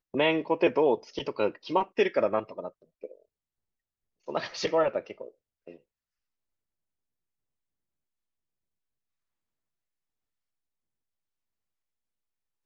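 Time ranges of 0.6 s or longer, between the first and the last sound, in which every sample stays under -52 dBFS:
3.22–4.28 s

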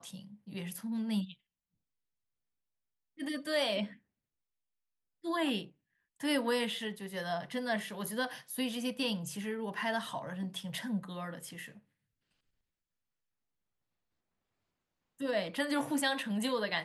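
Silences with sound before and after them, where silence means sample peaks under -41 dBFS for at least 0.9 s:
1.32–3.20 s
3.87–5.25 s
11.68–15.20 s

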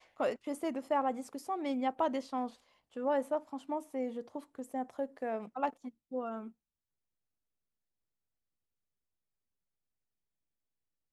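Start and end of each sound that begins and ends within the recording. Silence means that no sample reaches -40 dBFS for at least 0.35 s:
2.96–6.48 s

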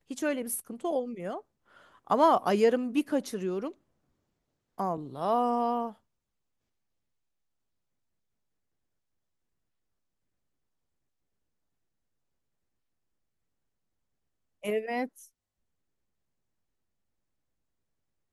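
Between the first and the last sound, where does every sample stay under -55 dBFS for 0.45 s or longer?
3.74–4.78 s
5.96–14.63 s

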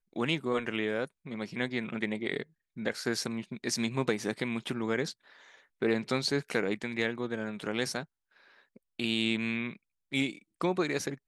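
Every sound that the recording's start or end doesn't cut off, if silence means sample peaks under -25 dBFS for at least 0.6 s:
5.82–8.00 s

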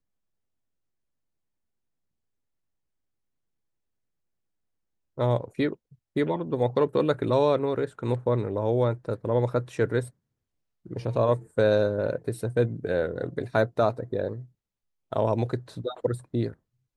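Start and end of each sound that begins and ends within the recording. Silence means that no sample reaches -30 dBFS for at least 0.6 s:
5.18–10.04 s
10.91–14.35 s

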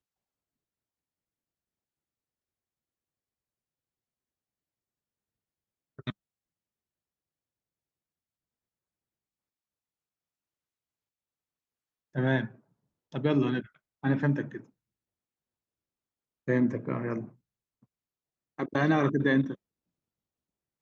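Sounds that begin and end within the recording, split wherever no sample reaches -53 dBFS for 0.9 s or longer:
5.99–6.12 s
12.15–14.66 s
16.47–19.55 s

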